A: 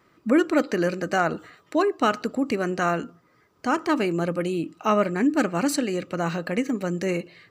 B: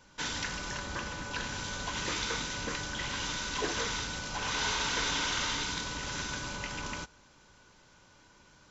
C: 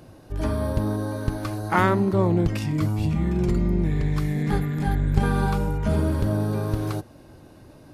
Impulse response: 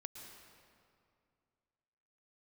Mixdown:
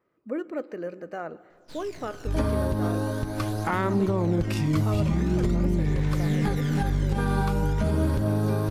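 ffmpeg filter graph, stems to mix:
-filter_complex "[0:a]equalizer=frequency=500:width_type=o:width=1:gain=8,equalizer=frequency=4000:width_type=o:width=1:gain=-6,equalizer=frequency=8000:width_type=o:width=1:gain=-9,volume=-17dB,asplit=2[link_01][link_02];[link_02]volume=-9.5dB[link_03];[1:a]aeval=exprs='max(val(0),0)':channel_layout=same,aphaser=in_gain=1:out_gain=1:delay=1.1:decay=0.68:speed=0.44:type=triangular,adelay=1500,volume=-11.5dB[link_04];[2:a]adelay=1950,volume=1dB[link_05];[3:a]atrim=start_sample=2205[link_06];[link_03][link_06]afir=irnorm=-1:irlink=0[link_07];[link_01][link_04][link_05][link_07]amix=inputs=4:normalize=0,alimiter=limit=-15dB:level=0:latency=1:release=148"

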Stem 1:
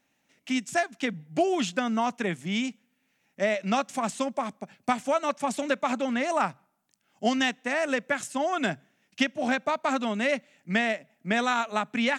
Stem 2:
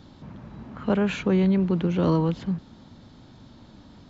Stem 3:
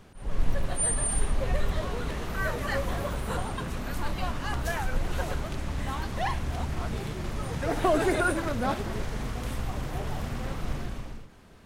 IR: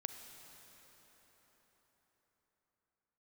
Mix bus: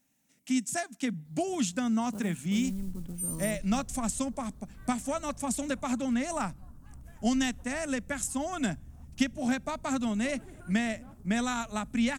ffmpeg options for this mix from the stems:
-filter_complex "[0:a]volume=1dB[link_01];[1:a]acrusher=bits=5:mode=log:mix=0:aa=0.000001,adelay=1250,volume=-15.5dB[link_02];[2:a]afwtdn=0.02,bass=frequency=250:gain=3,treble=frequency=4000:gain=7,adelay=2400,volume=-19.5dB[link_03];[link_01][link_02][link_03]amix=inputs=3:normalize=0,firequalizer=gain_entry='entry(250,0);entry(370,-9);entry(2700,-9);entry(8300,6)':delay=0.05:min_phase=1"

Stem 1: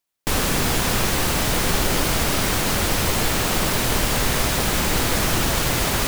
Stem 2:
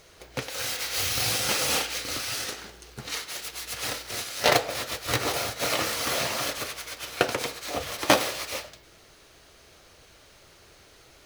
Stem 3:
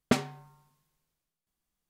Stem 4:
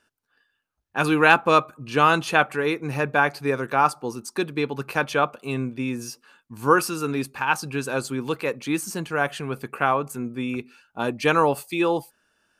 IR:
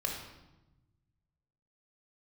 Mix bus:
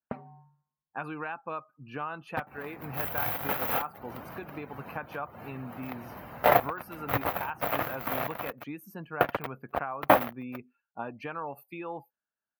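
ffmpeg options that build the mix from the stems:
-filter_complex "[0:a]highpass=89,adelay=2200,volume=-20dB[link_01];[1:a]equalizer=frequency=7100:width=0.63:gain=-6.5,acrusher=bits=3:mix=0:aa=0.5,adelay=2000,volume=-1dB[link_02];[2:a]highshelf=frequency=5800:gain=-6,volume=-2.5dB[link_03];[3:a]adynamicequalizer=threshold=0.0251:dfrequency=1800:dqfactor=0.7:tfrequency=1800:tqfactor=0.7:attack=5:release=100:ratio=0.375:range=2.5:mode=boostabove:tftype=highshelf,volume=-9.5dB[link_04];[link_01][link_03][link_04]amix=inputs=3:normalize=0,bandreject=frequency=3400:width=16,acompressor=threshold=-33dB:ratio=12,volume=0dB[link_05];[link_02][link_05]amix=inputs=2:normalize=0,highpass=52,afftdn=noise_reduction=19:noise_floor=-48,firequalizer=gain_entry='entry(240,0);entry(390,-4);entry(700,5);entry(4400,-17);entry(8100,-25);entry(13000,4)':delay=0.05:min_phase=1"

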